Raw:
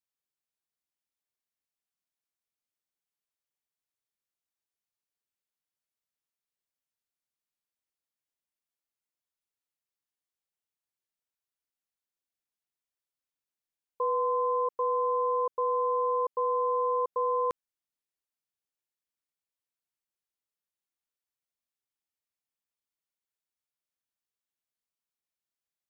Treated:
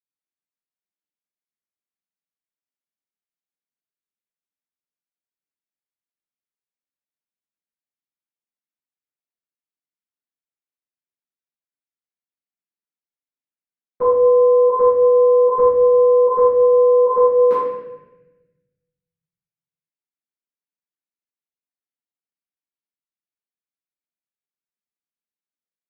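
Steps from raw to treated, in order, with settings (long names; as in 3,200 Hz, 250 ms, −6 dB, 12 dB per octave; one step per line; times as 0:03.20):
high-pass filter 180 Hz 24 dB per octave
noise gate with hold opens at −25 dBFS
bass and treble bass +9 dB, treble −11 dB
convolution reverb RT60 1.0 s, pre-delay 6 ms, DRR −14 dB
level −1.5 dB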